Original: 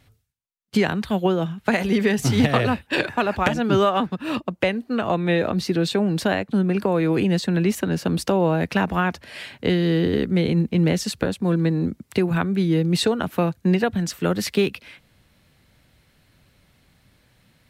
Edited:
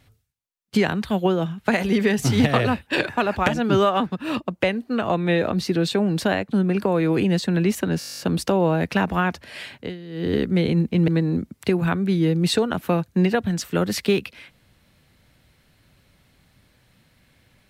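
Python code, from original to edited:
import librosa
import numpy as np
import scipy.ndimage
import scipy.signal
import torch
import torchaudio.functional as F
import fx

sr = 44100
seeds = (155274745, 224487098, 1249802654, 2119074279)

y = fx.edit(x, sr, fx.stutter(start_s=7.99, slice_s=0.02, count=11),
    fx.fade_down_up(start_s=9.55, length_s=0.56, db=-18.0, fade_s=0.25, curve='qua'),
    fx.cut(start_s=10.88, length_s=0.69), tone=tone)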